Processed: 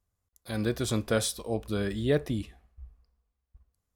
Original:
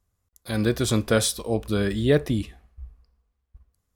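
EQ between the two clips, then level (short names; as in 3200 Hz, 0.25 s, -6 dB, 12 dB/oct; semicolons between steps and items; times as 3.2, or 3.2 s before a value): bell 700 Hz +2 dB; -6.5 dB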